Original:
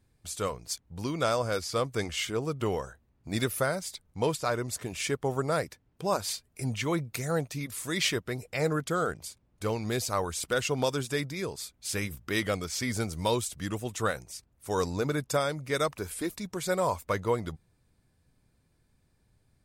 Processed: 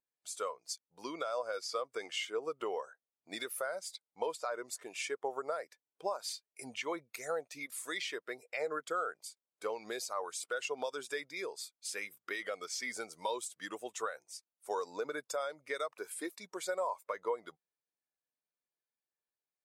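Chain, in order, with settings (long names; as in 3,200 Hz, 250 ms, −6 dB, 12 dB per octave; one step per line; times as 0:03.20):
high-pass filter 560 Hz 12 dB per octave
brickwall limiter −21.5 dBFS, peak gain reduction 7.5 dB
downward compressor 4 to 1, threshold −35 dBFS, peak gain reduction 7.5 dB
every bin expanded away from the loudest bin 1.5 to 1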